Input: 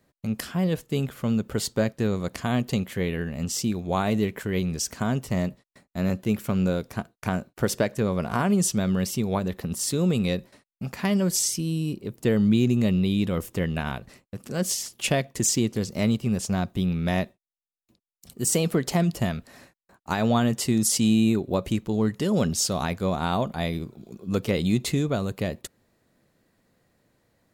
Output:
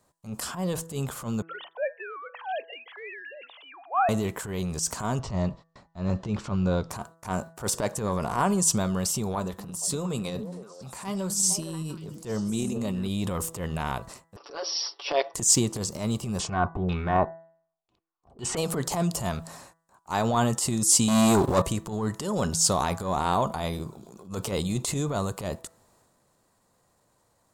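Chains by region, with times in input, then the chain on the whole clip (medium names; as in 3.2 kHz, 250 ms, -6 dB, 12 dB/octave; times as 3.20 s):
1.42–4.09 s: formants replaced by sine waves + steep high-pass 570 Hz
5.19–6.91 s: low-pass 5.1 kHz 24 dB/octave + bass shelf 120 Hz +9.5 dB
9.35–13.08 s: flange 1.5 Hz, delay 3.9 ms, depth 2.5 ms, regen -71% + repeats whose band climbs or falls 231 ms, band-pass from 200 Hz, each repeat 1.4 oct, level -6 dB
14.36–15.34 s: brick-wall FIR band-pass 300–5800 Hz + comb 7 ms, depth 96%
16.39–18.57 s: comb 2.7 ms, depth 36% + waveshaping leveller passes 1 + LFO low-pass saw down 2 Hz 520–3600 Hz
21.08–21.62 s: treble shelf 5.9 kHz +5 dB + waveshaping leveller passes 3
whole clip: graphic EQ 250/1000/2000/8000 Hz -4/+11/-6/+11 dB; transient shaper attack -12 dB, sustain +5 dB; de-hum 164.4 Hz, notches 12; trim -2 dB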